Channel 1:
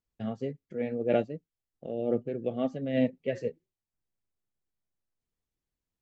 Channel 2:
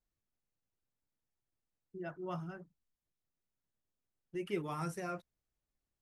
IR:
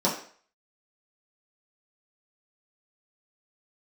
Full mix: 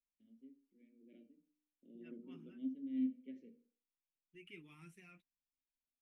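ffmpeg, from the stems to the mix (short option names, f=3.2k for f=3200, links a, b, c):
-filter_complex "[0:a]asplit=3[a][b][c];[a]bandpass=f=270:t=q:w=8,volume=0dB[d];[b]bandpass=f=2.29k:t=q:w=8,volume=-6dB[e];[c]bandpass=f=3.01k:t=q:w=8,volume=-9dB[f];[d][e][f]amix=inputs=3:normalize=0,equalizer=f=1.2k:t=o:w=2.7:g=-14,bandreject=f=60:t=h:w=6,bandreject=f=120:t=h:w=6,bandreject=f=180:t=h:w=6,bandreject=f=240:t=h:w=6,bandreject=f=300:t=h:w=6,volume=-7dB,afade=t=in:st=1.38:d=0.31:silence=0.298538,asplit=2[g][h];[h]volume=-16dB[i];[1:a]lowshelf=f=330:g=-11.5,flanger=delay=4.1:depth=3.5:regen=-54:speed=0.58:shape=sinusoidal,firequalizer=gain_entry='entry(260,0);entry(550,-27);entry(1500,-18);entry(2400,0);entry(4800,-19);entry(7700,-14)':delay=0.05:min_phase=1,volume=0dB[j];[2:a]atrim=start_sample=2205[k];[i][k]afir=irnorm=-1:irlink=0[l];[g][j][l]amix=inputs=3:normalize=0,equalizer=f=100:w=0.64:g=-8.5"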